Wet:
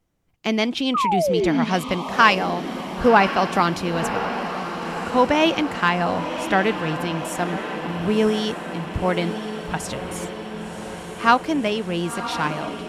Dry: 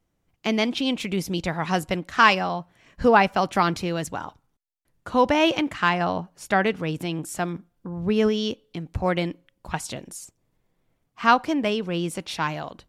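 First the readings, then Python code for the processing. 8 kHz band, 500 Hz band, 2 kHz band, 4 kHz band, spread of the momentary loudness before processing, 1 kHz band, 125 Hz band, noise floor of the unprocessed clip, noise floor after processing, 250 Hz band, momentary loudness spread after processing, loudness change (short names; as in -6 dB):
+2.0 dB, +3.0 dB, +2.5 dB, +2.5 dB, 15 LU, +3.0 dB, +2.5 dB, -74 dBFS, -35 dBFS, +3.0 dB, 13 LU, +2.0 dB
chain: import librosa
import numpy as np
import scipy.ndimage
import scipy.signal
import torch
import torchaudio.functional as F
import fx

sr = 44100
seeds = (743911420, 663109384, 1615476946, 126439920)

y = fx.spec_paint(x, sr, seeds[0], shape='fall', start_s=0.94, length_s=0.71, low_hz=220.0, high_hz=1300.0, level_db=-22.0)
y = fx.echo_diffused(y, sr, ms=1048, feedback_pct=69, wet_db=-9.5)
y = y * 10.0 ** (1.5 / 20.0)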